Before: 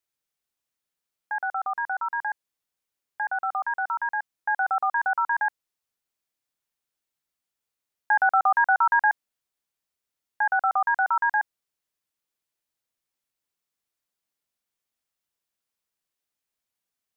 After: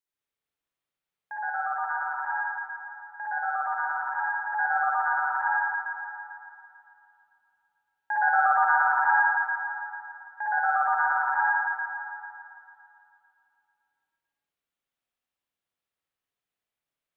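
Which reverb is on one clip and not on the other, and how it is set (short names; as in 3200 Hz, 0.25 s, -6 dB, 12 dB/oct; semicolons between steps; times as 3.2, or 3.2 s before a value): spring tank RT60 2.6 s, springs 53/60 ms, chirp 50 ms, DRR -8.5 dB; gain -8.5 dB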